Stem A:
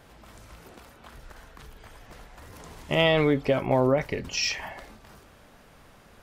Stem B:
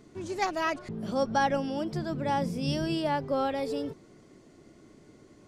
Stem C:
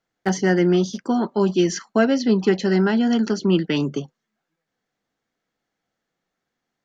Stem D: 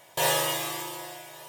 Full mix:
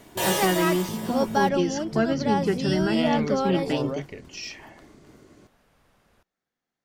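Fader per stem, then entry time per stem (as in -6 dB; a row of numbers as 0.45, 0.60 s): -9.5, +2.5, -6.5, -1.0 dB; 0.00, 0.00, 0.00, 0.00 s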